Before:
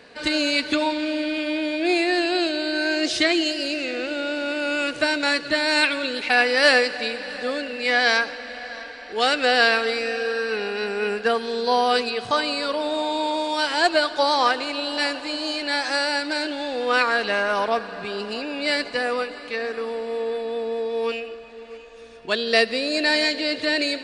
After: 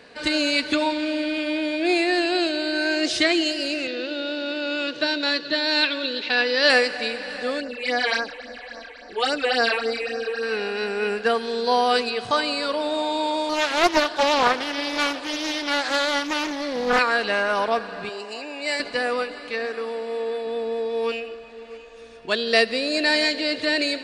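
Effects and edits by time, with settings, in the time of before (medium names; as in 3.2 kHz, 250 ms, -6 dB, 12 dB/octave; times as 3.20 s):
3.87–6.70 s: cabinet simulation 200–5500 Hz, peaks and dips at 760 Hz -9 dB, 1.3 kHz -6 dB, 2.2 kHz -8 dB, 3.7 kHz +5 dB
7.60–10.43 s: phase shifter stages 8, 3.6 Hz, lowest notch 180–3300 Hz
13.49–16.99 s: loudspeaker Doppler distortion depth 0.39 ms
18.09–18.80 s: cabinet simulation 420–9100 Hz, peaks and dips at 500 Hz -5 dB, 1.4 kHz -10 dB, 3.4 kHz -9 dB, 4.8 kHz -3 dB, 7.5 kHz +6 dB
19.66–20.47 s: bass shelf 140 Hz -9.5 dB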